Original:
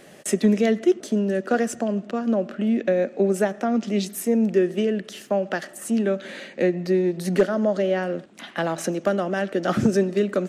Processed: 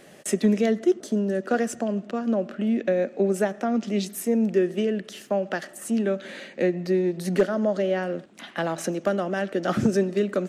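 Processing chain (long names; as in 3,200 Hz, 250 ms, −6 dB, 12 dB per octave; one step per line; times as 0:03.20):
0:00.66–0:01.43: parametric band 2,500 Hz −5.5 dB 0.69 octaves
level −2 dB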